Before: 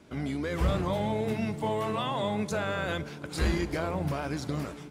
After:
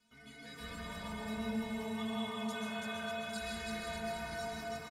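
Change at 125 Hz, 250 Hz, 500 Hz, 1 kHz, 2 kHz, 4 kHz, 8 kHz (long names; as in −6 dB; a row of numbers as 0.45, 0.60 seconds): −18.0, −8.0, −11.0, −9.0, −5.5, −4.0, −4.5 decibels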